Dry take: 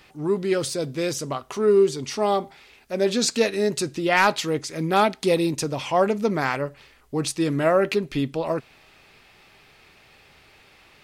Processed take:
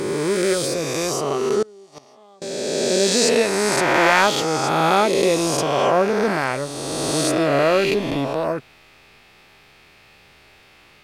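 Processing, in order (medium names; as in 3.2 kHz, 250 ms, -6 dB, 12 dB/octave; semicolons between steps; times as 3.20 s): reverse spectral sustain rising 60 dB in 2.57 s; 1.62–2.42 s: inverted gate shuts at -13 dBFS, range -28 dB; trim -1 dB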